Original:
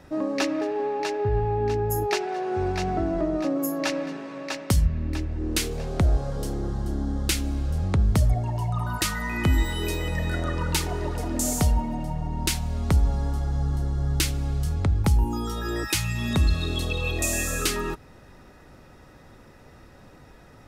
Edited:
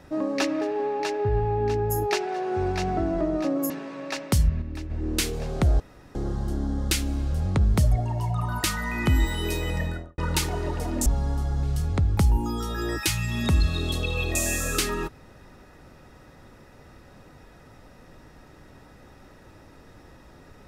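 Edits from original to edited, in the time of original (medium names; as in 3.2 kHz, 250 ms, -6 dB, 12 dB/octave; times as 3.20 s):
3.70–4.08 s: delete
5.00–5.28 s: gain -6 dB
6.18–6.53 s: room tone
10.14–10.56 s: studio fade out
11.44–13.02 s: delete
13.59–14.50 s: delete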